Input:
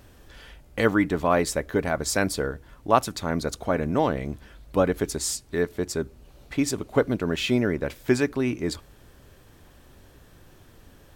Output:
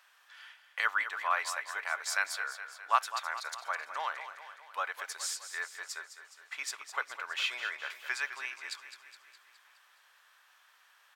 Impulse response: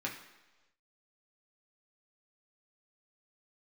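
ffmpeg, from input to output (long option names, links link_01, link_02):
-af "highpass=frequency=1100:width=0.5412,highpass=frequency=1100:width=1.3066,highshelf=frequency=4600:gain=-11.5,aecho=1:1:208|416|624|832|1040|1248|1456:0.282|0.163|0.0948|0.055|0.0319|0.0185|0.0107"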